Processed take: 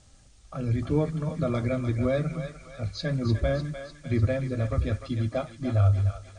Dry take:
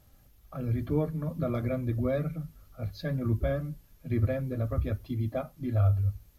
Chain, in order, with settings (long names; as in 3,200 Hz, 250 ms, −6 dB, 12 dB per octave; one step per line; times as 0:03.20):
Butterworth low-pass 9,200 Hz 96 dB per octave
high-shelf EQ 3,600 Hz +11.5 dB
on a send: feedback echo with a high-pass in the loop 300 ms, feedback 59%, high-pass 880 Hz, level −6.5 dB
on the sum: level +3 dB